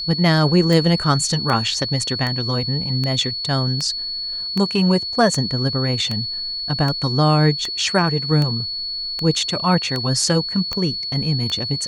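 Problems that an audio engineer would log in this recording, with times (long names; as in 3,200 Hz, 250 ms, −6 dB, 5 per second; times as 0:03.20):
scratch tick 78 rpm
whistle 4,400 Hz −24 dBFS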